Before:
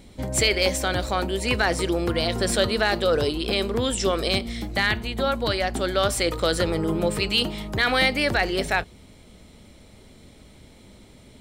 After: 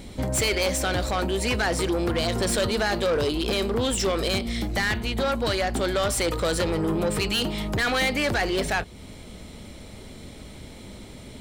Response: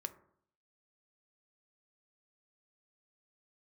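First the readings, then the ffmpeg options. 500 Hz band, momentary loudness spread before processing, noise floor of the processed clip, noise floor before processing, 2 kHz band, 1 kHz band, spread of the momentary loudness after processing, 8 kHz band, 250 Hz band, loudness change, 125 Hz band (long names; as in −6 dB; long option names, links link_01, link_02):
−1.0 dB, 5 LU, −43 dBFS, −50 dBFS, −2.5 dB, −1.5 dB, 19 LU, +0.5 dB, 0.0 dB, −1.5 dB, 0.0 dB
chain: -filter_complex "[0:a]asplit=2[link_01][link_02];[link_02]acompressor=threshold=-33dB:ratio=6,volume=2.5dB[link_03];[link_01][link_03]amix=inputs=2:normalize=0,asoftclip=type=tanh:threshold=-19dB"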